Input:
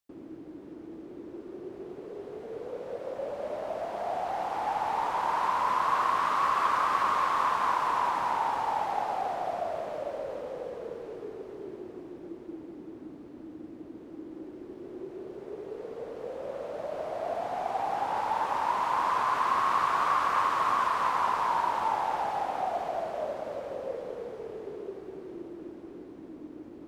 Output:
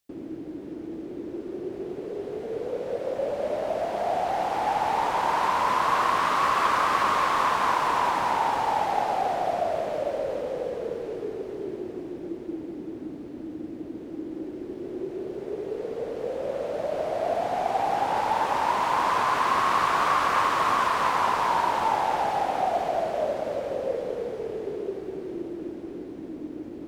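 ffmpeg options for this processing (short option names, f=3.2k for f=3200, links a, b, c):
-af "equalizer=f=1.1k:w=1.5:g=-5.5,volume=8dB"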